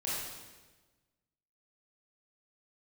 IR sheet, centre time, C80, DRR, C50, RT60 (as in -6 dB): 96 ms, 0.5 dB, -8.5 dB, -2.5 dB, 1.3 s